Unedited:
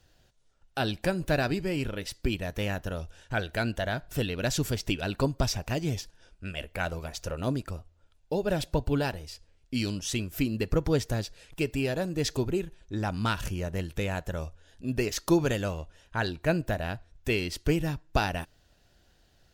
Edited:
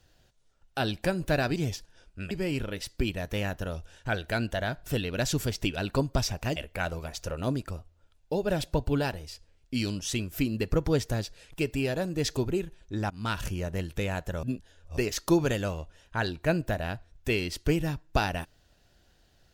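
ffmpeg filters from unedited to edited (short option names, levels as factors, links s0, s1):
-filter_complex "[0:a]asplit=7[s0][s1][s2][s3][s4][s5][s6];[s0]atrim=end=1.562[s7];[s1]atrim=start=5.808:end=6.562[s8];[s2]atrim=start=1.558:end=5.812[s9];[s3]atrim=start=6.558:end=13.1,asetpts=PTS-STARTPTS,afade=t=out:st=6.538:d=0.004:c=hsin:silence=0.0944061[s10];[s4]atrim=start=13.1:end=14.432,asetpts=PTS-STARTPTS,afade=t=in:d=0.27:silence=0.0944061[s11];[s5]atrim=start=14.428:end=14.972,asetpts=PTS-STARTPTS,areverse[s12];[s6]atrim=start=14.968[s13];[s7][s8]acrossfade=d=0.004:c1=hsin:c2=hsin[s14];[s14][s9]acrossfade=d=0.004:c1=hsin:c2=hsin[s15];[s10][s11]concat=n=2:v=0:a=1[s16];[s15][s16]acrossfade=d=0.004:c1=hsin:c2=hsin[s17];[s17][s12]acrossfade=d=0.004:c1=hsin:c2=hsin[s18];[s18][s13]acrossfade=d=0.004:c1=hsin:c2=hsin"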